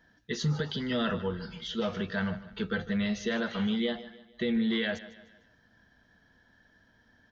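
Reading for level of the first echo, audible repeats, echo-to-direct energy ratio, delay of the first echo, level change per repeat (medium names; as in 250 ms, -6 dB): -16.0 dB, 3, -15.0 dB, 151 ms, -7.5 dB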